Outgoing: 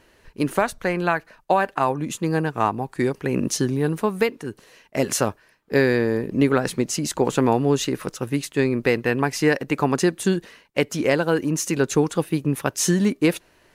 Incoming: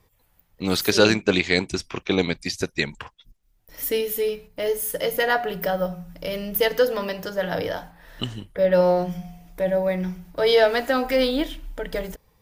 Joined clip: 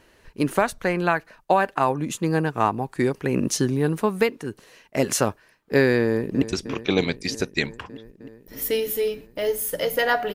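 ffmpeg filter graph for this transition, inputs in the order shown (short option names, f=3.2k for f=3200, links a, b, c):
-filter_complex "[0:a]apad=whole_dur=10.34,atrim=end=10.34,atrim=end=6.422[a];[1:a]atrim=start=1.628:end=5.55[b];[a][b]acrossfade=d=0.004:c1=hsin:c2=hsin,asplit=2[c][d];[d]afade=t=in:st=6.03:d=0.01,afade=t=out:st=6.42:d=0.01,aecho=0:1:310|620|930|1240|1550|1860|2170|2480|2790|3100|3410|3720:0.251189|0.200951|0.160761|0.128609|0.102887|0.0823095|0.0658476|0.0526781|0.0421425|0.033714|0.0269712|0.0215769[e];[c][e]amix=inputs=2:normalize=0"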